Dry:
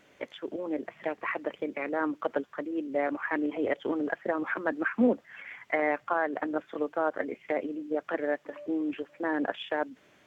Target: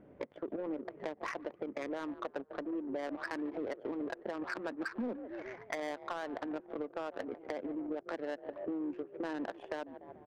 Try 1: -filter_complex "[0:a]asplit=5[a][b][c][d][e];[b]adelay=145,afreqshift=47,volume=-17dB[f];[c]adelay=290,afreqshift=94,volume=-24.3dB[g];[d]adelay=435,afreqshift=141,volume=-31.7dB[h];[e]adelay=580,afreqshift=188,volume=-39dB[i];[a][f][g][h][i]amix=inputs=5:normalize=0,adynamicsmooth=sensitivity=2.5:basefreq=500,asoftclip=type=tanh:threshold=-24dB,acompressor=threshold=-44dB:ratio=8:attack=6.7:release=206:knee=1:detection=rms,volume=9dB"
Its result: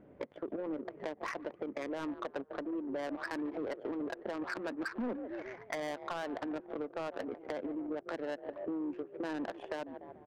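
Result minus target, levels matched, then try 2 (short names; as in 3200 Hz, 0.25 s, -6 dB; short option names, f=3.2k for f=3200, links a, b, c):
soft clip: distortion +9 dB
-filter_complex "[0:a]asplit=5[a][b][c][d][e];[b]adelay=145,afreqshift=47,volume=-17dB[f];[c]adelay=290,afreqshift=94,volume=-24.3dB[g];[d]adelay=435,afreqshift=141,volume=-31.7dB[h];[e]adelay=580,afreqshift=188,volume=-39dB[i];[a][f][g][h][i]amix=inputs=5:normalize=0,adynamicsmooth=sensitivity=2.5:basefreq=500,asoftclip=type=tanh:threshold=-16.5dB,acompressor=threshold=-44dB:ratio=8:attack=6.7:release=206:knee=1:detection=rms,volume=9dB"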